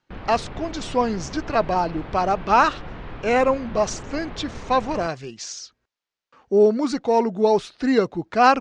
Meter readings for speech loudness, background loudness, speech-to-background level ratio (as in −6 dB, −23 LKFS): −22.0 LKFS, −37.5 LKFS, 15.5 dB